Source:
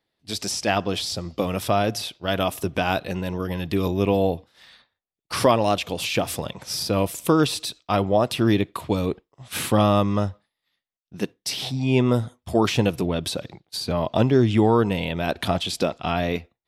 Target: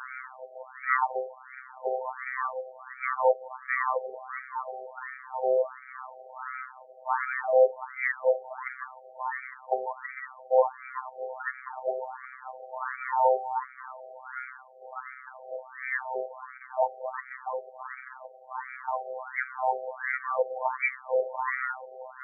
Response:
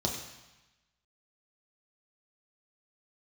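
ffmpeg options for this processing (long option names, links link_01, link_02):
-af "aeval=exprs='val(0)+0.5*0.0316*sgn(val(0))':channel_layout=same,afftfilt=real='hypot(re,im)*cos(PI*b)':imag='0':win_size=1024:overlap=0.75,asetrate=33075,aresample=44100,afftfilt=real='re*between(b*sr/1024,560*pow(1700/560,0.5+0.5*sin(2*PI*1.4*pts/sr))/1.41,560*pow(1700/560,0.5+0.5*sin(2*PI*1.4*pts/sr))*1.41)':imag='im*between(b*sr/1024,560*pow(1700/560,0.5+0.5*sin(2*PI*1.4*pts/sr))/1.41,560*pow(1700/560,0.5+0.5*sin(2*PI*1.4*pts/sr))*1.41)':win_size=1024:overlap=0.75,volume=6.5dB"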